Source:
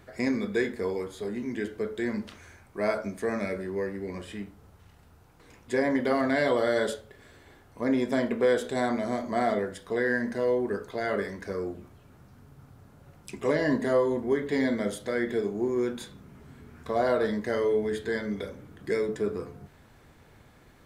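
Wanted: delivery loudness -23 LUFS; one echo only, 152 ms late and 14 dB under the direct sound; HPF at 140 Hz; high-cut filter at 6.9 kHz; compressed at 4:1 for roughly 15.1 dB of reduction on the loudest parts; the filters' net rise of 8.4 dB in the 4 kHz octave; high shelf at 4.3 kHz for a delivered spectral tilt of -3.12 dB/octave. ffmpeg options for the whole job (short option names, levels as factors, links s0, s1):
-af "highpass=140,lowpass=6900,equalizer=f=4000:t=o:g=8,highshelf=f=4300:g=5,acompressor=threshold=0.0126:ratio=4,aecho=1:1:152:0.2,volume=7.08"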